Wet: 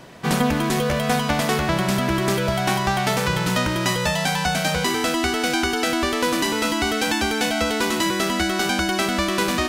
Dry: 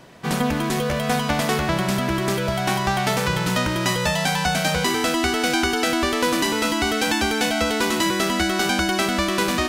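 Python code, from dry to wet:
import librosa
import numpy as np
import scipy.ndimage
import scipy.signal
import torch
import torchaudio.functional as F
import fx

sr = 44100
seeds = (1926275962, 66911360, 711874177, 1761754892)

y = fx.rider(x, sr, range_db=4, speed_s=0.5)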